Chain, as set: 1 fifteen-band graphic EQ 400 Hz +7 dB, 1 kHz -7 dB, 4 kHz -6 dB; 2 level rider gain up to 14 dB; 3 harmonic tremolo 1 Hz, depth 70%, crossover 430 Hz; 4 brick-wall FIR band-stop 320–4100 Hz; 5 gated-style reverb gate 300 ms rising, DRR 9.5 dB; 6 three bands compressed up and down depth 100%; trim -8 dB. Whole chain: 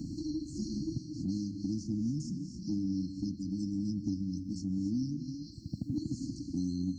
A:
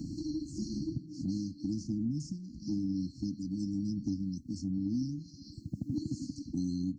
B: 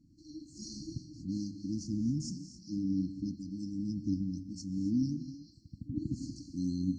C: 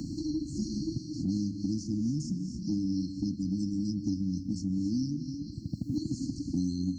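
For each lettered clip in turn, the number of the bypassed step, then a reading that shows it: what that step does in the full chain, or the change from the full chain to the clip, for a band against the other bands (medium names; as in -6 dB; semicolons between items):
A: 5, momentary loudness spread change +1 LU; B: 6, crest factor change +4.0 dB; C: 3, loudness change +3.0 LU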